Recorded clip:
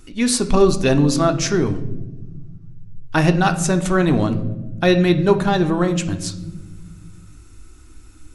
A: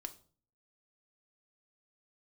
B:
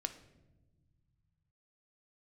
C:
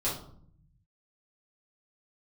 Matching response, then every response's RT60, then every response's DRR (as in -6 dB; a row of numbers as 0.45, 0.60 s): B; 0.45 s, not exponential, 0.60 s; 6.5, 7.5, -8.0 dB